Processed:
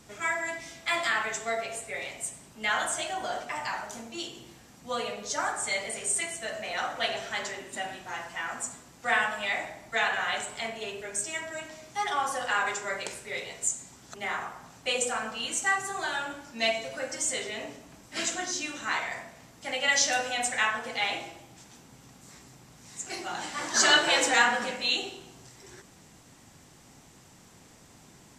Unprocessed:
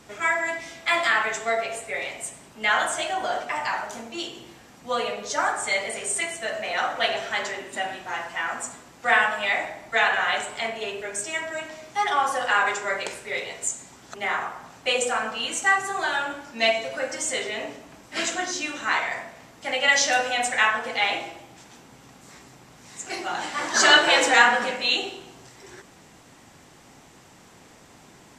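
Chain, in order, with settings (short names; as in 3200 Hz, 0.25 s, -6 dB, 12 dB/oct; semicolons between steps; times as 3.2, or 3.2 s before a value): tone controls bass +6 dB, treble +6 dB; gain -6.5 dB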